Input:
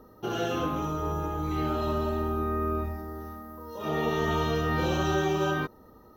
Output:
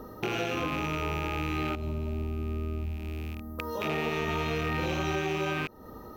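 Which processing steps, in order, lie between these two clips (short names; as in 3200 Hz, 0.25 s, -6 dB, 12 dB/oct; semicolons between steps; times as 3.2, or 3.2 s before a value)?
rattling part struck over -42 dBFS, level -22 dBFS; 1.75–3.59 EQ curve 130 Hz 0 dB, 1800 Hz -21 dB, 9800 Hz -11 dB; compressor 3:1, threshold -41 dBFS, peak gain reduction 14 dB; gain +9 dB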